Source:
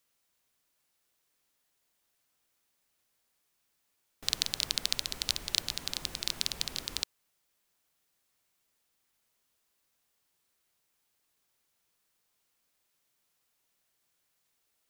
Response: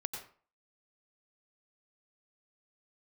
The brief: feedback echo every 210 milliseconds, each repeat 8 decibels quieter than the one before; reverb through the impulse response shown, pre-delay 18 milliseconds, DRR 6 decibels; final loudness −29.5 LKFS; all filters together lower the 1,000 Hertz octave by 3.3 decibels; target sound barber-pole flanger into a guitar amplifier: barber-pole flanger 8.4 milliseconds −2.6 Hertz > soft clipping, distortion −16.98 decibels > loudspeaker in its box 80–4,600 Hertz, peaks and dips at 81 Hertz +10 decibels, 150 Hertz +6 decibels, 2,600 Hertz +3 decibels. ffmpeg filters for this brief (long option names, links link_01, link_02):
-filter_complex "[0:a]equalizer=frequency=1000:width_type=o:gain=-4.5,aecho=1:1:210|420|630|840|1050:0.398|0.159|0.0637|0.0255|0.0102,asplit=2[link_01][link_02];[1:a]atrim=start_sample=2205,adelay=18[link_03];[link_02][link_03]afir=irnorm=-1:irlink=0,volume=-6.5dB[link_04];[link_01][link_04]amix=inputs=2:normalize=0,asplit=2[link_05][link_06];[link_06]adelay=8.4,afreqshift=-2.6[link_07];[link_05][link_07]amix=inputs=2:normalize=1,asoftclip=threshold=-15dB,highpass=80,equalizer=frequency=81:width_type=q:width=4:gain=10,equalizer=frequency=150:width_type=q:width=4:gain=6,equalizer=frequency=2600:width_type=q:width=4:gain=3,lowpass=frequency=4600:width=0.5412,lowpass=frequency=4600:width=1.3066,volume=8dB"